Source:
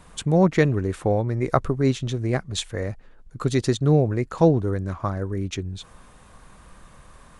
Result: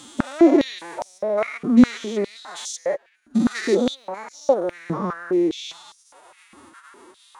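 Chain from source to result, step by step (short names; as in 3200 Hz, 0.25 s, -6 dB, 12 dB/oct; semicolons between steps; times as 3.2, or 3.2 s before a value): stepped spectrum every 0.2 s; formant-preserving pitch shift +10 st; stepped high-pass 4.9 Hz 230–5700 Hz; gain +3.5 dB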